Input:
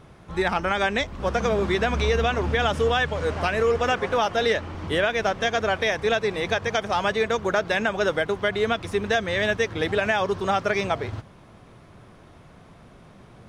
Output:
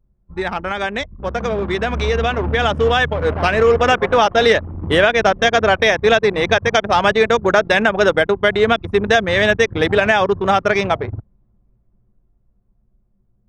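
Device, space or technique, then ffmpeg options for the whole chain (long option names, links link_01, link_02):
voice memo with heavy noise removal: -af "anlmdn=63.1,dynaudnorm=framelen=620:gausssize=9:maxgain=11dB,volume=1dB"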